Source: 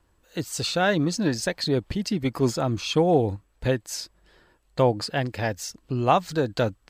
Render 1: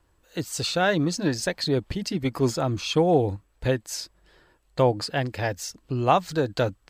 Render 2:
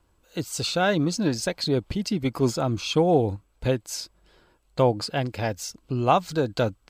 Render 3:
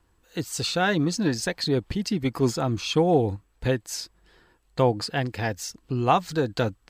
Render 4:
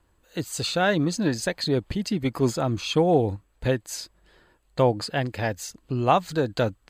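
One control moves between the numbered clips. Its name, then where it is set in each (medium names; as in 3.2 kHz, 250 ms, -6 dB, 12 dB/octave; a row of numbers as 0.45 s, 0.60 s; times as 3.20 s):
band-stop, frequency: 220 Hz, 1.8 kHz, 590 Hz, 5.5 kHz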